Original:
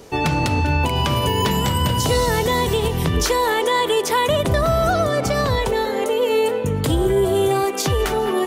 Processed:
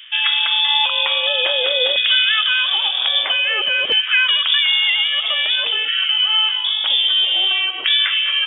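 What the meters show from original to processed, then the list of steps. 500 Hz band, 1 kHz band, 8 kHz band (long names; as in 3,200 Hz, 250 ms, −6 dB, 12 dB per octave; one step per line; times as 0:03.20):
−12.0 dB, −8.5 dB, below −40 dB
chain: voice inversion scrambler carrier 3,500 Hz
auto-filter high-pass saw down 0.51 Hz 420–1,800 Hz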